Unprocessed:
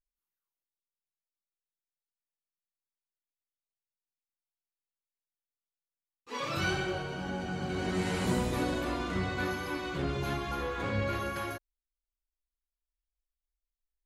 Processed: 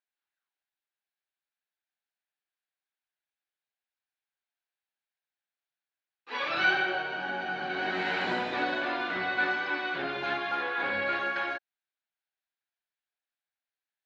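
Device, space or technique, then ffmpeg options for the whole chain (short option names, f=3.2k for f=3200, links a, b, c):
phone earpiece: -af "highpass=410,equalizer=f=480:t=q:w=4:g=-5,equalizer=f=770:t=q:w=4:g=5,equalizer=f=1.1k:t=q:w=4:g=-4,equalizer=f=1.6k:t=q:w=4:g=9,equalizer=f=2.4k:t=q:w=4:g=3,equalizer=f=3.9k:t=q:w=4:g=3,lowpass=f=4.1k:w=0.5412,lowpass=f=4.1k:w=1.3066,volume=3.5dB"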